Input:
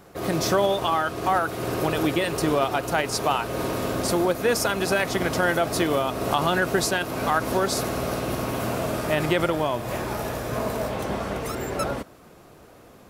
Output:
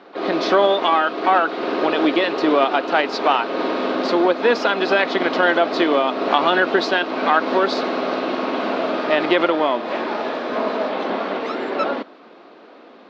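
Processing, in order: harmoniser +12 st -16 dB; elliptic band-pass 250–4100 Hz, stop band 40 dB; gain +6.5 dB

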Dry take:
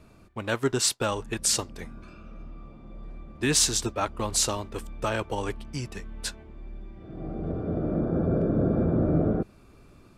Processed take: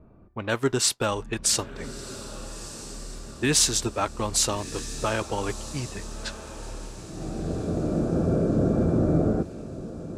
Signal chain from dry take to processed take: low-pass opened by the level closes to 800 Hz, open at -25 dBFS; diffused feedback echo 1.306 s, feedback 46%, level -14 dB; gain +1.5 dB

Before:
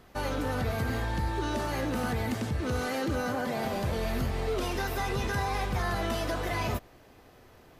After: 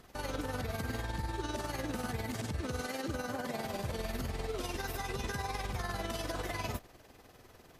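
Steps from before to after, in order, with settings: bell 8100 Hz +5.5 dB 2 oct; limiter -26.5 dBFS, peak gain reduction 6.5 dB; AM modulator 20 Hz, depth 40%

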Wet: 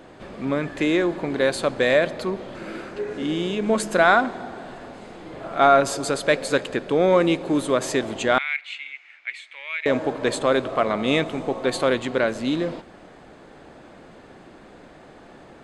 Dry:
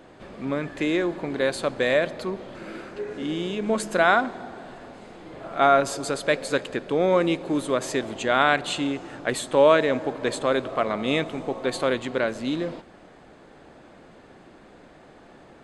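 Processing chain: in parallel at -6.5 dB: soft clip -12 dBFS, distortion -15 dB; 8.38–9.86 on the sum: ladder band-pass 2300 Hz, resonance 85%

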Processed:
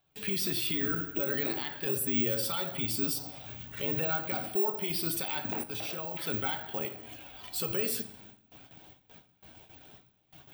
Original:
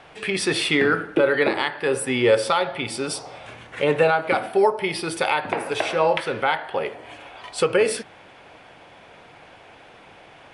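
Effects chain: bin magnitudes rounded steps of 15 dB; gate with hold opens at -37 dBFS; ten-band EQ 500 Hz -12 dB, 1000 Hz -9 dB, 2000 Hz -10 dB; limiter -25.5 dBFS, peak gain reduction 10 dB; 5.61–6.18 level quantiser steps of 20 dB; on a send at -10.5 dB: reverb RT60 0.75 s, pre-delay 6 ms; on the sum: careless resampling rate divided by 2×, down filtered, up zero stuff

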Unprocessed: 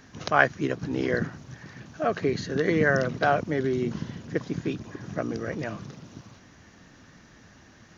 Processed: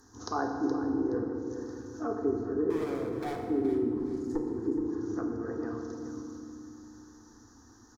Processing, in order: 3.99–4.48 minimum comb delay 0.44 ms; bell 3100 Hz -14.5 dB 1.2 oct; fixed phaser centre 600 Hz, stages 6; treble ducked by the level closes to 820 Hz, closed at -28 dBFS; 2.7–3.41 overloaded stage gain 32.5 dB; high shelf 4200 Hz +11.5 dB; notch 2800 Hz, Q 6.7; feedback echo 0.421 s, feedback 27%, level -11 dB; FDN reverb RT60 2.3 s, low-frequency decay 1.5×, high-frequency decay 0.6×, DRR 2.5 dB; gain -3 dB

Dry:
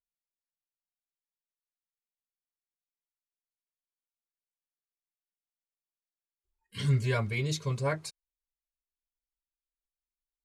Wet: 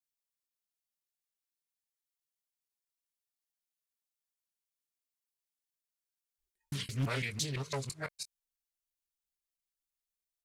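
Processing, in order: local time reversal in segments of 0.168 s; high shelf 2500 Hz +12 dB; doubler 22 ms -12 dB; Doppler distortion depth 0.83 ms; gain -8 dB

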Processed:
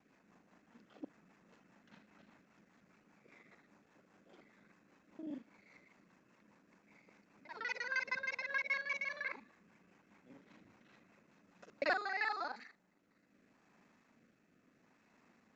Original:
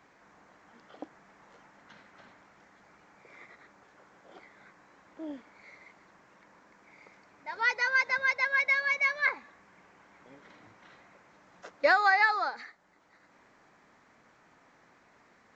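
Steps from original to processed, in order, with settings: local time reversal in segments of 39 ms; high shelf 5400 Hz +4.5 dB; small resonant body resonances 210/2600 Hz, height 10 dB, ringing for 20 ms; rotary speaker horn 5 Hz, later 0.75 Hz, at 11.35; gain -9 dB

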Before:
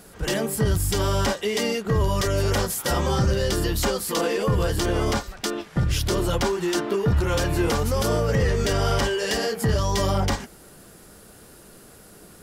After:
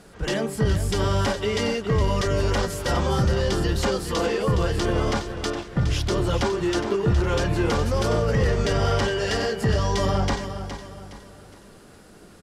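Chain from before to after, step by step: air absorption 61 m; on a send: feedback echo 0.415 s, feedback 38%, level -10 dB

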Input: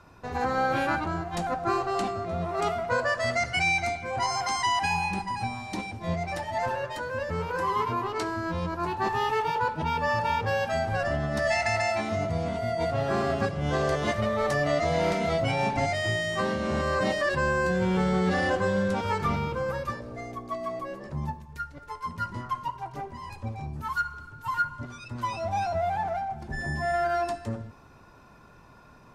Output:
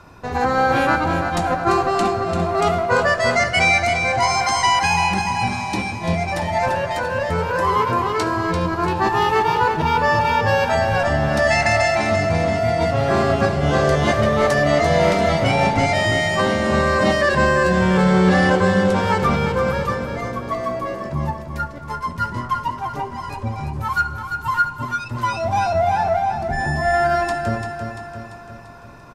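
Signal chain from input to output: feedback echo 0.342 s, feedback 54%, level -7.5 dB; gain +8.5 dB

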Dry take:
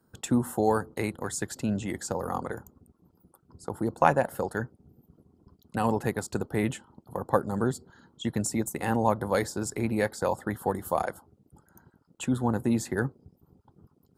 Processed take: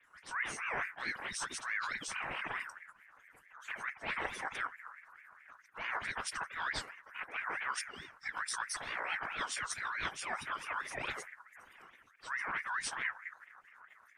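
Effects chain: transient shaper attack -10 dB, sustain +6 dB; reverse; compressor 6:1, threshold -38 dBFS, peak gain reduction 19 dB; reverse; formant-preserving pitch shift -11 st; dispersion highs, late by 41 ms, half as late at 2600 Hz; ring modulator with a swept carrier 1600 Hz, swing 25%, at 4.6 Hz; gain +6.5 dB

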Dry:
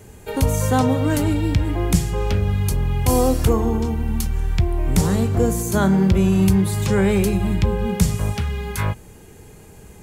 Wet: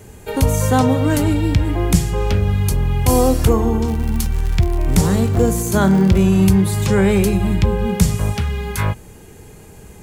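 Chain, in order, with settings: 3.86–6.23 crackle 85/s -24 dBFS; gain +3 dB

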